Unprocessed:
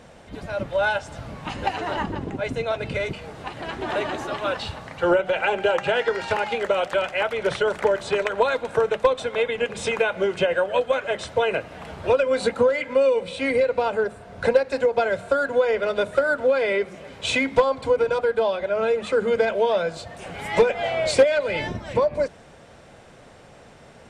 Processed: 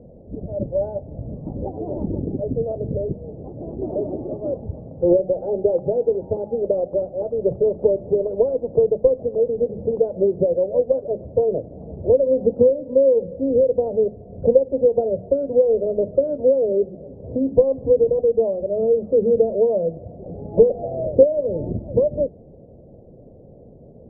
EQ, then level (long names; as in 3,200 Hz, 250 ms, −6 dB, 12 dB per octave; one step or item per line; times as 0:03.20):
Butterworth low-pass 580 Hz 36 dB per octave
high-frequency loss of the air 420 metres
+6.0 dB